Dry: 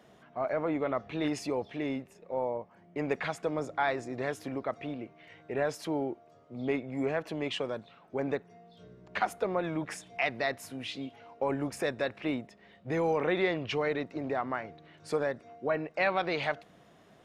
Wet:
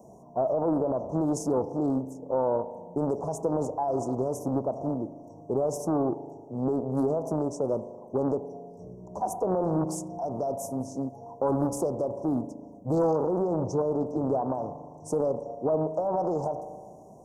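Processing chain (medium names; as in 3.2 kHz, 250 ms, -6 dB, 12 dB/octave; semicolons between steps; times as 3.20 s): spring tank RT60 1.6 s, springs 38 ms, chirp 60 ms, DRR 12 dB; peak limiter -25 dBFS, peak gain reduction 9.5 dB; Chebyshev band-stop 990–5800 Hz, order 5; loudspeaker Doppler distortion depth 0.37 ms; trim +9 dB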